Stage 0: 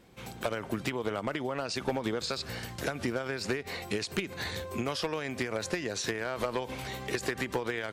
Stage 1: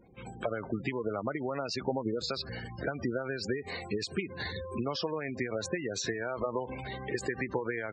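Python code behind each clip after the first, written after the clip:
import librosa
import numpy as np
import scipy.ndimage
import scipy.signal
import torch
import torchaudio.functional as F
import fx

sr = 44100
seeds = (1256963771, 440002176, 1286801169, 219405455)

y = fx.spec_gate(x, sr, threshold_db=-15, keep='strong')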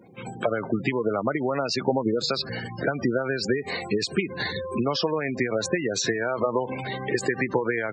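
y = scipy.signal.sosfilt(scipy.signal.butter(4, 110.0, 'highpass', fs=sr, output='sos'), x)
y = y * 10.0 ** (8.5 / 20.0)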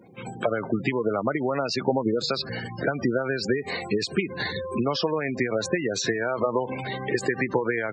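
y = fx.dynamic_eq(x, sr, hz=7600.0, q=0.94, threshold_db=-40.0, ratio=4.0, max_db=-3)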